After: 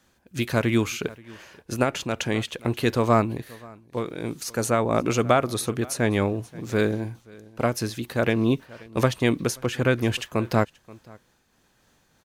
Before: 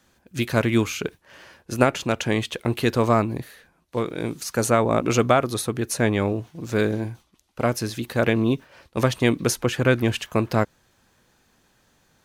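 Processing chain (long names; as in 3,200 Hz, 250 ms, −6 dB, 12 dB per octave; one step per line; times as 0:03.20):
single-tap delay 530 ms −23 dB
amplitude modulation by smooth noise, depth 60%
level +1.5 dB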